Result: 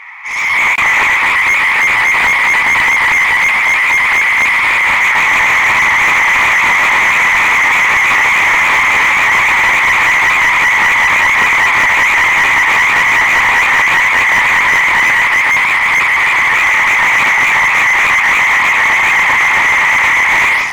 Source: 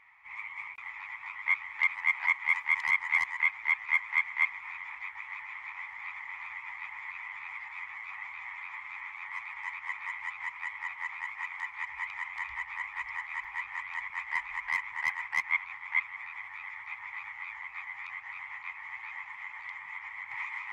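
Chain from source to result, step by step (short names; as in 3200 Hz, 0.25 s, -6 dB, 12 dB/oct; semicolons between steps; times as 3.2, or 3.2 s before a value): overdrive pedal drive 35 dB, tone 5500 Hz, clips at -14 dBFS; AGC gain up to 15 dB; slew limiter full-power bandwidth 790 Hz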